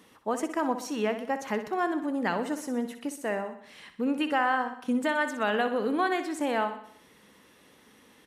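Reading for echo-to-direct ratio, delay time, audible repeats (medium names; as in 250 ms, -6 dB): -9.0 dB, 62 ms, 5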